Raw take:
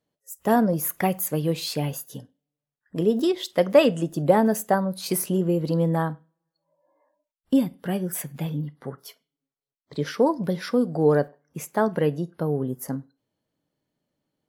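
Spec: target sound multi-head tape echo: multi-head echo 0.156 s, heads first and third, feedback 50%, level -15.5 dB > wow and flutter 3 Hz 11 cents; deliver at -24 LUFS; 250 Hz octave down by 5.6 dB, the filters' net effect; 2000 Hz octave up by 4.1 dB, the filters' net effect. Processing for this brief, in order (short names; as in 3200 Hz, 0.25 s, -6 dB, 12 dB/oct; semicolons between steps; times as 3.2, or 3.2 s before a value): bell 250 Hz -8 dB; bell 2000 Hz +5.5 dB; multi-head echo 0.156 s, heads first and third, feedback 50%, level -15.5 dB; wow and flutter 3 Hz 11 cents; gain +2 dB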